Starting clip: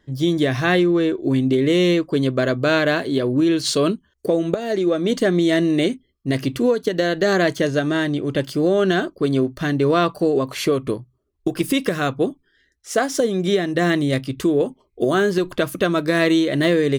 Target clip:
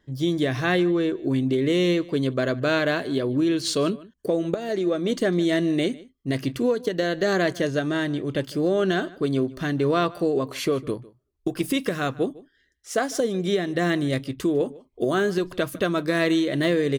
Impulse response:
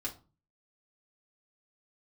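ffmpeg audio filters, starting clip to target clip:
-filter_complex "[0:a]asplit=2[s0][s1];[s1]adelay=151.6,volume=0.0891,highshelf=f=4000:g=-3.41[s2];[s0][s2]amix=inputs=2:normalize=0,volume=0.596"

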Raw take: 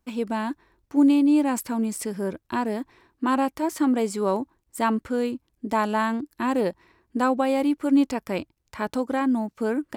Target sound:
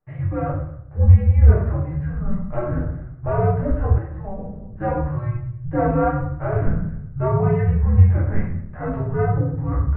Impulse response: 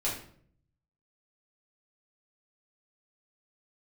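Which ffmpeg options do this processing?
-filter_complex "[0:a]highpass=f=180:t=q:w=0.5412,highpass=f=180:t=q:w=1.307,lowpass=f=2200:t=q:w=0.5176,lowpass=f=2200:t=q:w=0.7071,lowpass=f=2200:t=q:w=1.932,afreqshift=-370[s0];[1:a]atrim=start_sample=2205,asetrate=29988,aresample=44100[s1];[s0][s1]afir=irnorm=-1:irlink=0,asettb=1/sr,asplit=3[s2][s3][s4];[s2]atrim=end=3.984[s5];[s3]atrim=start=3.98:end=4.79,asetpts=PTS-STARTPTS,afade=t=in:d=0.004:c=qsin,afade=t=out:st=0.806:d=0.004:c=qsin,acrossover=split=420|1300[s6][s7][s8];[s6]acompressor=threshold=0.0562:ratio=4[s9];[s7]acompressor=threshold=0.0355:ratio=4[s10];[s8]acompressor=threshold=0.00224:ratio=4[s11];[s9][s10][s11]amix=inputs=3:normalize=0[s12];[s4]atrim=start=4.786[s13];[s5][s12]acrossfade=d=0.004:c1=hsin:c2=qsin[s14];[s14][s13]acrossfade=d=0.004:c1=qsin:c2=hsin,volume=0.531"

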